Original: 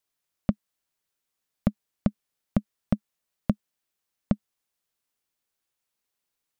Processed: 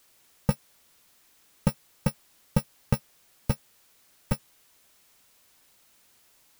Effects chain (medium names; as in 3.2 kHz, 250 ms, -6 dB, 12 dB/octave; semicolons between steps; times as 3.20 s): bit-reversed sample order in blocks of 128 samples; power-law waveshaper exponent 0.7; slew-rate limiter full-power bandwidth 230 Hz